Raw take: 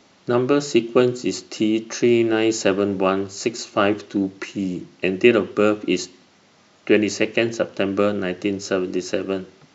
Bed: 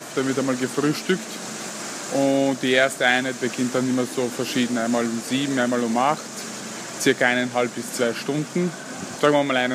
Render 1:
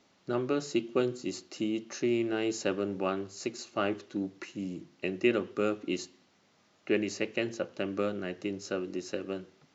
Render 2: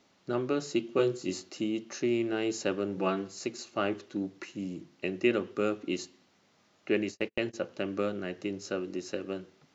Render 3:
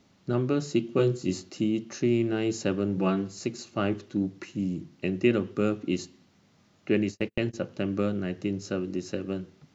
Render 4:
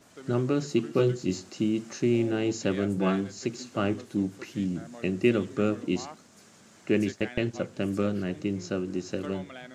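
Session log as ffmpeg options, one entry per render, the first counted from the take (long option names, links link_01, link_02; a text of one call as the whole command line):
ffmpeg -i in.wav -af "volume=-12dB" out.wav
ffmpeg -i in.wav -filter_complex "[0:a]asettb=1/sr,asplit=3[link_01][link_02][link_03];[link_01]atrim=end=0.934[link_04];[link_02]atrim=start=0.93:end=1.5,asetpts=PTS-STARTPTS,afade=type=in:duration=0.004:curve=qsin,afade=type=out:start_time=0.566:duration=0.004:curve=qsin,asplit=2[link_05][link_06];[link_06]adelay=22,volume=-3dB[link_07];[link_05][link_07]amix=inputs=2:normalize=0,atrim=end_sample=25137[link_08];[link_03]atrim=start=1.496[link_09];[link_04][link_08]acrossfade=duration=0.004:curve1=hsin:curve2=qsin[link_10];[link_10][link_09]acrossfade=duration=0.004:curve1=qsin:curve2=hsin,asettb=1/sr,asplit=3[link_11][link_12][link_13];[link_11]atrim=end=2.974[link_14];[link_12]atrim=start=2.97:end=3.39,asetpts=PTS-STARTPTS,afade=type=in:duration=0.004:curve=qsin,afade=type=out:start_time=0.416:duration=0.004:curve=qsin,aecho=1:1:6:0.81,atrim=end_sample=18522[link_15];[link_13]atrim=start=3.386[link_16];[link_14][link_15]acrossfade=duration=0.004:curve1=hsin:curve2=qsin[link_17];[link_17][link_16]acrossfade=duration=0.004:curve1=qsin:curve2=hsin,asplit=3[link_18][link_19][link_20];[link_18]afade=type=out:start_time=6.96:duration=0.02[link_21];[link_19]agate=range=-39dB:threshold=-38dB:ratio=16:release=100:detection=peak,afade=type=in:start_time=6.96:duration=0.02,afade=type=out:start_time=7.53:duration=0.02[link_22];[link_20]afade=type=in:start_time=7.53:duration=0.02[link_23];[link_21][link_22][link_23]amix=inputs=3:normalize=0" out.wav
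ffmpeg -i in.wav -af "bass=frequency=250:gain=13,treble=frequency=4000:gain=1" out.wav
ffmpeg -i in.wav -i bed.wav -filter_complex "[1:a]volume=-23dB[link_01];[0:a][link_01]amix=inputs=2:normalize=0" out.wav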